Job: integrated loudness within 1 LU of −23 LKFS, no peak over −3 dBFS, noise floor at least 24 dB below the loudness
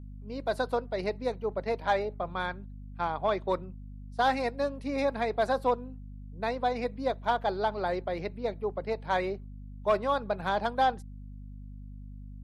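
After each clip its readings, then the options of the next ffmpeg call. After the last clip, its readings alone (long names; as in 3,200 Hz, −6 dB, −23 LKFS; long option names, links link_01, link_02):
mains hum 50 Hz; hum harmonics up to 250 Hz; level of the hum −41 dBFS; integrated loudness −31.0 LKFS; sample peak −16.0 dBFS; target loudness −23.0 LKFS
→ -af "bandreject=frequency=50:width_type=h:width=6,bandreject=frequency=100:width_type=h:width=6,bandreject=frequency=150:width_type=h:width=6,bandreject=frequency=200:width_type=h:width=6,bandreject=frequency=250:width_type=h:width=6"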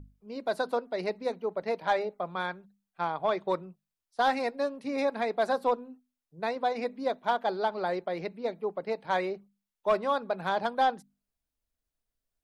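mains hum none found; integrated loudness −31.0 LKFS; sample peak −16.0 dBFS; target loudness −23.0 LKFS
→ -af "volume=8dB"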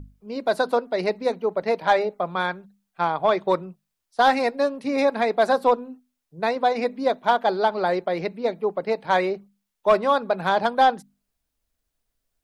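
integrated loudness −23.0 LKFS; sample peak −8.0 dBFS; background noise floor −80 dBFS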